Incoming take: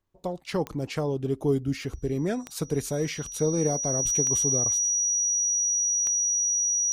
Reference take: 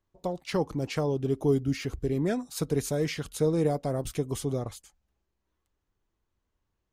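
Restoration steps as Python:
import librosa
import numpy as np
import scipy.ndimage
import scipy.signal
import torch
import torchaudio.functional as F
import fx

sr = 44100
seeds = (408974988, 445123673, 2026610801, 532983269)

y = fx.fix_declick_ar(x, sr, threshold=10.0)
y = fx.notch(y, sr, hz=5800.0, q=30.0)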